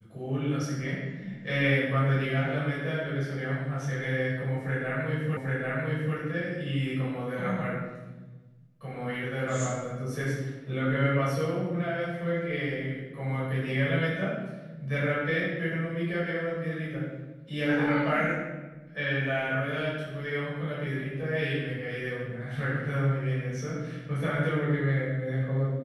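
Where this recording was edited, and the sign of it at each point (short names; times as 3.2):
5.37 repeat of the last 0.79 s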